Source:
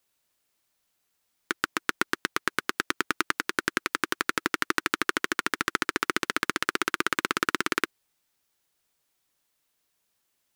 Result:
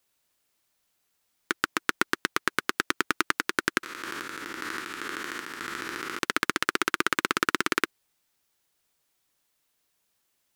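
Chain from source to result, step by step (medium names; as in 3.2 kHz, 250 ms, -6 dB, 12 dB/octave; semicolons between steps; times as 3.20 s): 3.83–6.19 s: spectrogram pixelated in time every 200 ms; trim +1 dB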